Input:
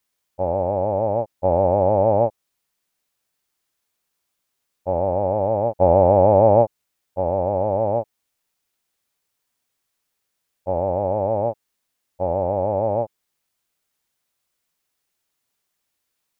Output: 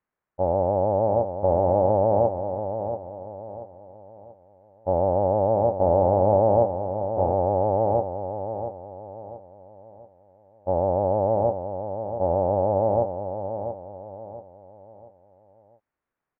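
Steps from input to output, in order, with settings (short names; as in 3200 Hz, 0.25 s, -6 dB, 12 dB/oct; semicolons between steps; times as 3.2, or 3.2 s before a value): LPF 1800 Hz 24 dB/oct; in parallel at -2 dB: negative-ratio compressor -19 dBFS, ratio -0.5; on the sum: feedback echo 0.684 s, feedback 37%, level -8.5 dB; gain -6.5 dB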